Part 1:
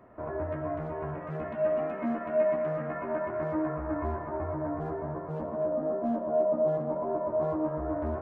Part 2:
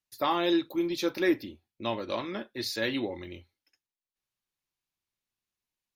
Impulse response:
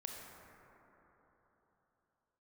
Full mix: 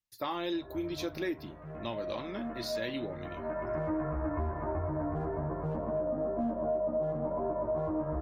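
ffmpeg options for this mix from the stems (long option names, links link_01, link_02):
-filter_complex "[0:a]aeval=exprs='val(0)+0.00282*(sin(2*PI*50*n/s)+sin(2*PI*2*50*n/s)/2+sin(2*PI*3*50*n/s)/3+sin(2*PI*4*50*n/s)/4+sin(2*PI*5*50*n/s)/5)':channel_layout=same,adelay=350,volume=2dB[link_01];[1:a]volume=-5.5dB,asplit=2[link_02][link_03];[link_03]apad=whole_len=377893[link_04];[link_01][link_04]sidechaincompress=threshold=-47dB:ratio=5:attack=21:release=795[link_05];[link_05][link_02]amix=inputs=2:normalize=0,lowshelf=frequency=110:gain=8,acompressor=threshold=-31dB:ratio=3"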